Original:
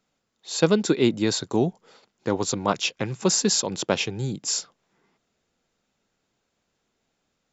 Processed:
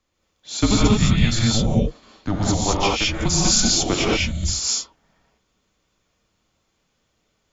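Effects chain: frequency shift -210 Hz; gated-style reverb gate 240 ms rising, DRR -5 dB

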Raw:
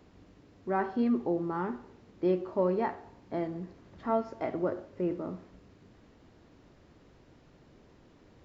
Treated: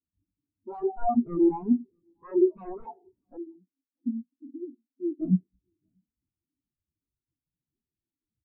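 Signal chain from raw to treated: local Wiener filter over 15 samples; in parallel at +3 dB: compression 12:1, threshold -36 dBFS, peak gain reduction 14.5 dB; 3.37–5.20 s: on the sum: vowel filter i; sine folder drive 15 dB, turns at -14 dBFS; on a send: delay 640 ms -12 dB; on the sum: spectral contrast expander 4:1

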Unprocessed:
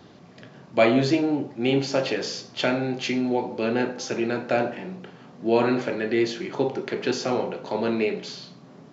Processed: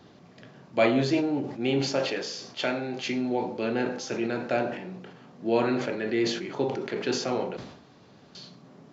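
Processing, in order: 1.99–3.06 s: bass shelf 200 Hz -8 dB; 7.57–8.35 s: room tone; decay stretcher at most 70 dB/s; trim -4 dB

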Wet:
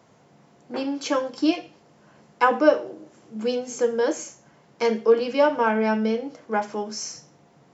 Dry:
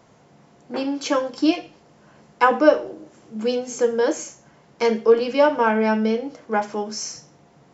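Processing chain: high-pass 80 Hz; trim -2.5 dB

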